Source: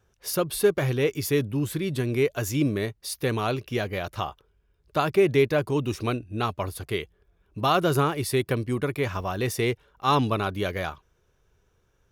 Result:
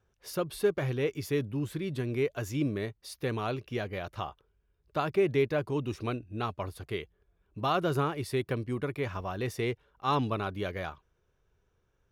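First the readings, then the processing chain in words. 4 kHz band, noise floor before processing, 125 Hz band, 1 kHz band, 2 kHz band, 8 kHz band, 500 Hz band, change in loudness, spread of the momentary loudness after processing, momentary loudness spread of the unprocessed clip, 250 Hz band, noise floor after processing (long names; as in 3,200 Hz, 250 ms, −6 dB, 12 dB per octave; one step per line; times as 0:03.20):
−8.5 dB, −68 dBFS, −6.0 dB, −6.5 dB, −7.0 dB, −12.5 dB, −6.0 dB, −6.5 dB, 10 LU, 9 LU, −6.0 dB, −74 dBFS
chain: high-shelf EQ 6,000 Hz −9.5 dB
level −6 dB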